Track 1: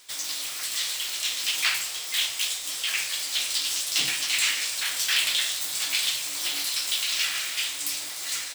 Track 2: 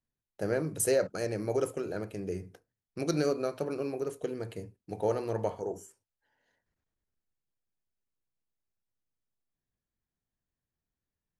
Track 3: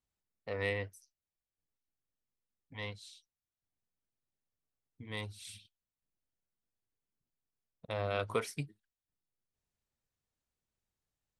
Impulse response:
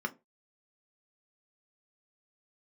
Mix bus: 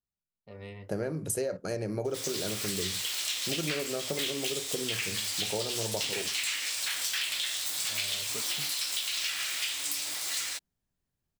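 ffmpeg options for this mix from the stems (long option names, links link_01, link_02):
-filter_complex "[0:a]adelay=2050,volume=1dB[link_01];[1:a]acontrast=75,adelay=500,volume=-2dB,asplit=2[link_02][link_03];[link_03]volume=-16dB[link_04];[2:a]volume=-8dB,asplit=2[link_05][link_06];[link_06]volume=-6dB[link_07];[3:a]atrim=start_sample=2205[link_08];[link_04][link_07]amix=inputs=2:normalize=0[link_09];[link_09][link_08]afir=irnorm=-1:irlink=0[link_10];[link_01][link_02][link_05][link_10]amix=inputs=4:normalize=0,acompressor=threshold=-29dB:ratio=6"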